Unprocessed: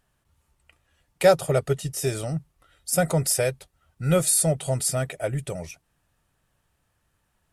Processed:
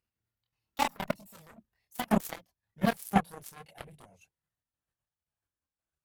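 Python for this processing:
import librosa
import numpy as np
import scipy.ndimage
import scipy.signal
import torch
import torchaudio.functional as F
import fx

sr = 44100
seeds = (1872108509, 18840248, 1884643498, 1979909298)

y = fx.speed_glide(x, sr, from_pct=162, to_pct=87)
y = fx.highpass(y, sr, hz=73.0, slope=6)
y = fx.dynamic_eq(y, sr, hz=130.0, q=0.82, threshold_db=-39.0, ratio=4.0, max_db=7)
y = fx.level_steps(y, sr, step_db=9)
y = fx.chorus_voices(y, sr, voices=4, hz=0.55, base_ms=26, depth_ms=2.0, mix_pct=50)
y = fx.cheby_harmonics(y, sr, harmonics=(7,), levels_db=(-15,), full_scale_db=-12.0)
y = fx.tremolo_shape(y, sr, shape='saw_down', hz=1.9, depth_pct=65)
y = F.gain(torch.from_numpy(y), 2.0).numpy()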